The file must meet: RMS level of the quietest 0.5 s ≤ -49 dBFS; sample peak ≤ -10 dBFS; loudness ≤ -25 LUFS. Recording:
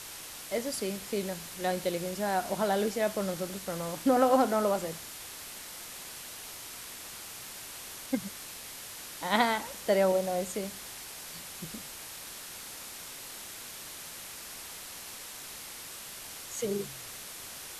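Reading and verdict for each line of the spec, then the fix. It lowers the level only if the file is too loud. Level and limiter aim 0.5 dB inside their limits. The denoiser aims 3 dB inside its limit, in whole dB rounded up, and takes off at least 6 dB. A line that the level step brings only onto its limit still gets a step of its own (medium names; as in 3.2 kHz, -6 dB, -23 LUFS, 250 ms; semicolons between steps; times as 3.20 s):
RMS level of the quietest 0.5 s -44 dBFS: fail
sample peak -9.5 dBFS: fail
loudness -33.5 LUFS: pass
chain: noise reduction 8 dB, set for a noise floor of -44 dBFS; peak limiter -10.5 dBFS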